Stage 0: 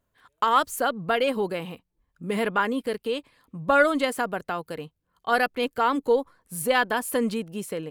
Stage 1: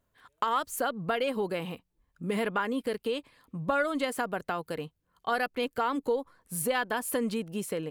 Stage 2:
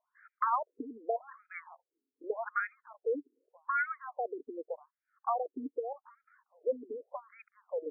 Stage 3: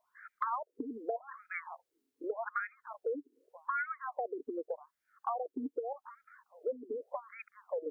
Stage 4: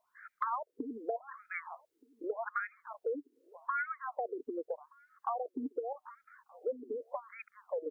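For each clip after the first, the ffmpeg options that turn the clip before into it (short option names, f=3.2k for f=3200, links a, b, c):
-af "acompressor=threshold=-28dB:ratio=2.5"
-af "afftfilt=real='re*between(b*sr/1024,310*pow(1800/310,0.5+0.5*sin(2*PI*0.84*pts/sr))/1.41,310*pow(1800/310,0.5+0.5*sin(2*PI*0.84*pts/sr))*1.41)':imag='im*between(b*sr/1024,310*pow(1800/310,0.5+0.5*sin(2*PI*0.84*pts/sr))/1.41,310*pow(1800/310,0.5+0.5*sin(2*PI*0.84*pts/sr))*1.41)':win_size=1024:overlap=0.75"
-af "acompressor=threshold=-43dB:ratio=3,volume=7dB"
-filter_complex "[0:a]asplit=2[a][b];[b]adelay=1224,volume=-25dB,highshelf=f=4k:g=-27.6[c];[a][c]amix=inputs=2:normalize=0"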